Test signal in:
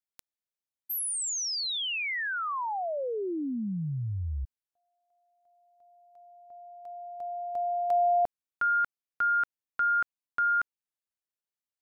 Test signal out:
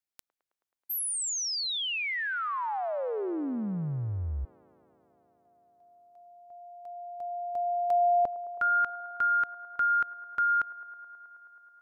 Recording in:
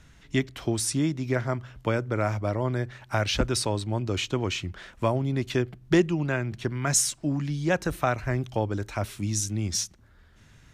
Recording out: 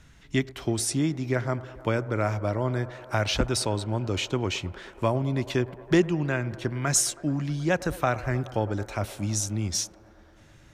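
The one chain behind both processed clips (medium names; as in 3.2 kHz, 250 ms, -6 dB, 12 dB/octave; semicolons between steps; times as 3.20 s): feedback echo behind a band-pass 107 ms, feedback 84%, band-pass 730 Hz, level -17 dB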